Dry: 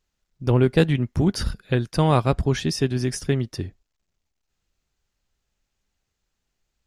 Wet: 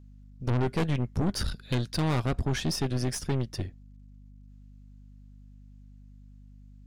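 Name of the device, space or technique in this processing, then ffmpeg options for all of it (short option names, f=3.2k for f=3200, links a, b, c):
valve amplifier with mains hum: -filter_complex "[0:a]asettb=1/sr,asplit=3[a][b][c];[a]atrim=end=1.454[d];[b]atrim=start=1.45:end=2,asetpts=PTS-STARTPTS,afade=t=in:d=0.004:c=qsin,afade=t=out:st=0.546:d=0.004:c=qsin,equalizer=f=4k:t=o:w=0.5:g=10[e];[c]atrim=start=1.996[f];[d][e]acrossfade=d=0.004:c1=hsin:c2=qsin[g];[g][f]acrossfade=d=0.004:c1=qsin:c2=hsin,aeval=exprs='(tanh(14.1*val(0)+0.6)-tanh(0.6))/14.1':c=same,aeval=exprs='val(0)+0.00355*(sin(2*PI*50*n/s)+sin(2*PI*2*50*n/s)/2+sin(2*PI*3*50*n/s)/3+sin(2*PI*4*50*n/s)/4+sin(2*PI*5*50*n/s)/5)':c=same"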